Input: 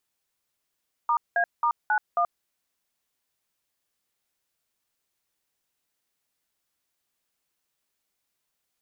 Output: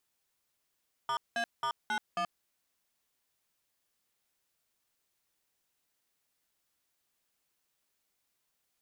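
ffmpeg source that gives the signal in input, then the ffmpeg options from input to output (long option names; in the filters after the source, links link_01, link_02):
-f lavfi -i "aevalsrc='0.075*clip(min(mod(t,0.27),0.08-mod(t,0.27))/0.002,0,1)*(eq(floor(t/0.27),0)*(sin(2*PI*941*mod(t,0.27))+sin(2*PI*1209*mod(t,0.27)))+eq(floor(t/0.27),1)*(sin(2*PI*697*mod(t,0.27))+sin(2*PI*1633*mod(t,0.27)))+eq(floor(t/0.27),2)*(sin(2*PI*941*mod(t,0.27))+sin(2*PI*1209*mod(t,0.27)))+eq(floor(t/0.27),3)*(sin(2*PI*852*mod(t,0.27))+sin(2*PI*1477*mod(t,0.27)))+eq(floor(t/0.27),4)*(sin(2*PI*697*mod(t,0.27))+sin(2*PI*1209*mod(t,0.27))))':duration=1.35:sample_rate=44100"
-af "asoftclip=type=tanh:threshold=-30.5dB"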